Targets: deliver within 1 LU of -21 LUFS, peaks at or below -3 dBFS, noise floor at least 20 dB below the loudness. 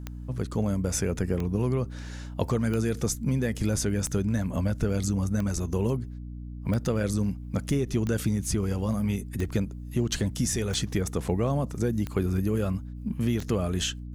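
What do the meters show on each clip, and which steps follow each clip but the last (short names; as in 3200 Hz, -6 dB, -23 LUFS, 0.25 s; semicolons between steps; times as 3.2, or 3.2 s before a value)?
clicks 11; hum 60 Hz; harmonics up to 300 Hz; hum level -35 dBFS; loudness -28.5 LUFS; peak -13.0 dBFS; loudness target -21.0 LUFS
-> de-click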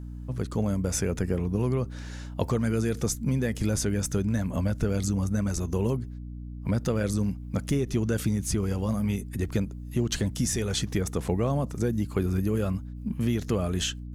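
clicks 0; hum 60 Hz; harmonics up to 300 Hz; hum level -35 dBFS
-> de-hum 60 Hz, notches 5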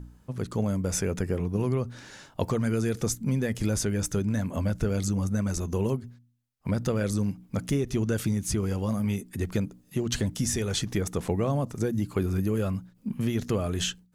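hum none; loudness -29.0 LUFS; peak -12.5 dBFS; loudness target -21.0 LUFS
-> gain +8 dB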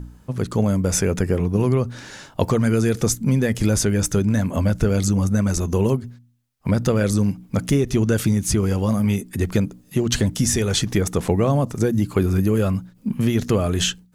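loudness -21.0 LUFS; peak -4.5 dBFS; noise floor -53 dBFS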